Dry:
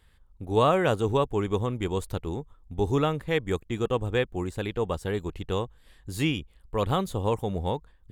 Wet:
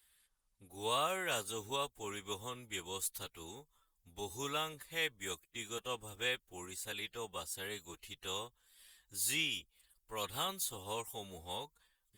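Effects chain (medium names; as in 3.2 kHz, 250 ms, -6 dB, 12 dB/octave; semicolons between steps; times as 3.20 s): time stretch by phase-locked vocoder 1.5×; pre-emphasis filter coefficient 0.97; trim +5.5 dB; Opus 32 kbps 48 kHz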